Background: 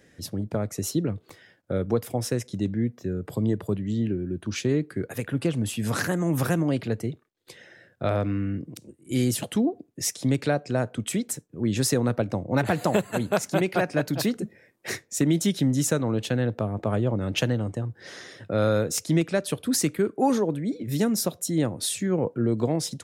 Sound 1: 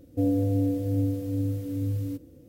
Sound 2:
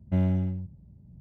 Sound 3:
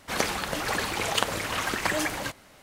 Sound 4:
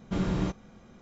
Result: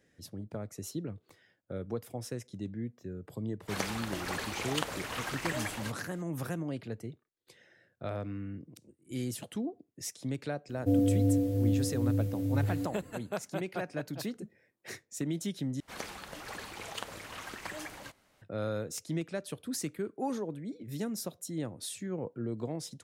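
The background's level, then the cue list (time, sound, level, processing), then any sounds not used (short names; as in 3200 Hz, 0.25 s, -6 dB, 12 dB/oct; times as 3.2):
background -12 dB
3.6 add 3 -8.5 dB
10.69 add 1 -1.5 dB
15.8 replace with 3 -14.5 dB
not used: 2, 4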